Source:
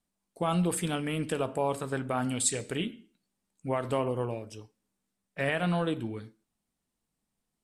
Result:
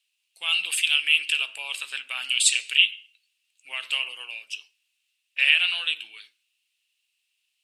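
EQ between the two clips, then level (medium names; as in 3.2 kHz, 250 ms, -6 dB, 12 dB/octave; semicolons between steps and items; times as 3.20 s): resonant high-pass 2.7 kHz, resonance Q 8.7; peaking EQ 4 kHz +4.5 dB 0.86 oct; +5.0 dB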